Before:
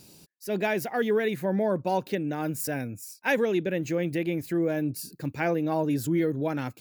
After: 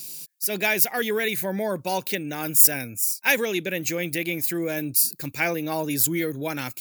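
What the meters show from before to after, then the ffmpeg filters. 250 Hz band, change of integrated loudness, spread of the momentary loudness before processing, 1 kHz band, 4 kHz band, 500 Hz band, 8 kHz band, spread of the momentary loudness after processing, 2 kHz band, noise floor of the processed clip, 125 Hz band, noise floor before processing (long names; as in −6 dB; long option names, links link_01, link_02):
−2.0 dB, +5.5 dB, 7 LU, +0.5 dB, +11.0 dB, −1.0 dB, +17.0 dB, 11 LU, +7.0 dB, −48 dBFS, −2.5 dB, −57 dBFS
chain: -af "equalizer=frequency=2300:width=6.5:gain=4.5,crystalizer=i=8:c=0,volume=-2.5dB"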